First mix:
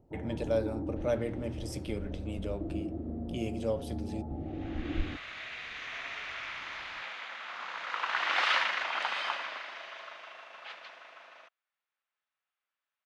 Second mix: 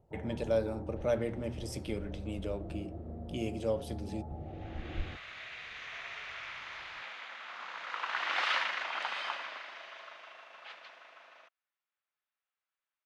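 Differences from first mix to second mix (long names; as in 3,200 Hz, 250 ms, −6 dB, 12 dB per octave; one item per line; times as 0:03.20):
first sound: add parametric band 280 Hz −15 dB 0.58 octaves
second sound −3.5 dB
master: add low-shelf EQ 69 Hz −5 dB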